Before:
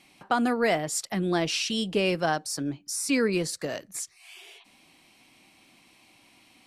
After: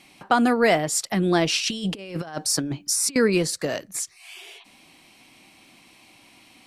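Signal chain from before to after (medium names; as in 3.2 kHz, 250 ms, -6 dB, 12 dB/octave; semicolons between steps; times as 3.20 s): 1.57–3.16 s: compressor with a negative ratio -32 dBFS, ratio -0.5; trim +5.5 dB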